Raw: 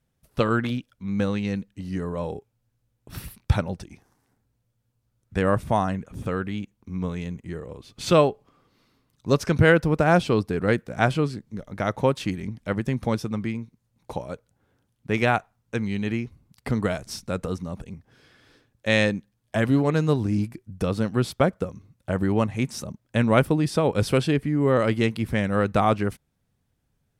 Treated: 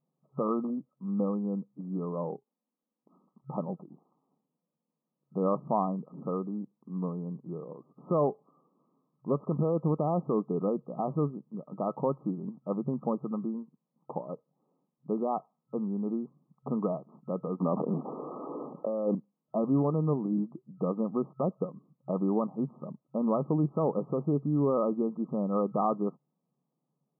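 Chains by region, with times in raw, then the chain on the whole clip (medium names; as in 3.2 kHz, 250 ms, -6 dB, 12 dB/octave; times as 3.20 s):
2.36–3.36 s: brick-wall FIR high-pass 180 Hz + peaking EQ 510 Hz -3.5 dB 1.9 oct + compression 3:1, threshold -56 dBFS
17.60–19.15 s: waveshaping leveller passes 1 + high-pass 270 Hz + level flattener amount 70%
whole clip: peak limiter -12.5 dBFS; FFT band-pass 130–1300 Hz; trim -4 dB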